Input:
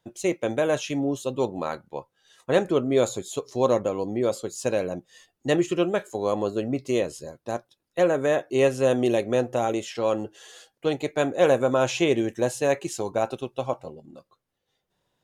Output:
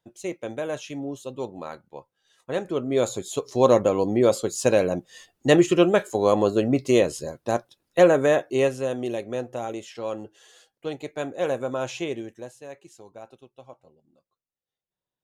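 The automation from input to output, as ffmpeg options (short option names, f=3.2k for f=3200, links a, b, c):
-af "volume=5.5dB,afade=t=in:st=2.62:d=1.3:silence=0.251189,afade=t=out:st=8.01:d=0.87:silence=0.251189,afade=t=out:st=11.94:d=0.61:silence=0.266073"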